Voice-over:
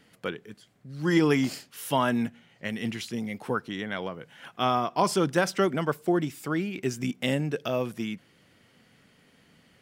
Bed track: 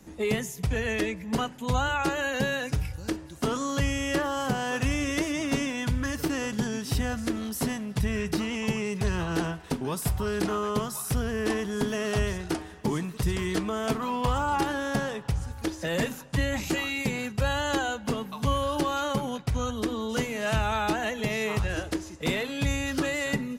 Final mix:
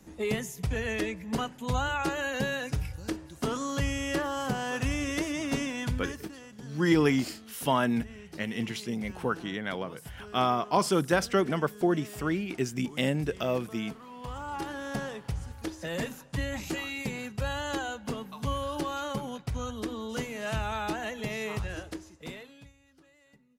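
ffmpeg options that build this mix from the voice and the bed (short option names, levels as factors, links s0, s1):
-filter_complex "[0:a]adelay=5750,volume=0.891[s0];[1:a]volume=2.82,afade=t=out:st=5.88:d=0.44:silence=0.188365,afade=t=in:st=14.09:d=0.94:silence=0.251189,afade=t=out:st=21.53:d=1.19:silence=0.0398107[s1];[s0][s1]amix=inputs=2:normalize=0"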